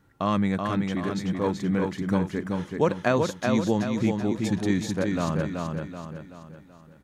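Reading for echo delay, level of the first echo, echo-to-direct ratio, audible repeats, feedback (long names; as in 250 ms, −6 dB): 380 ms, −4.0 dB, −3.0 dB, 5, 45%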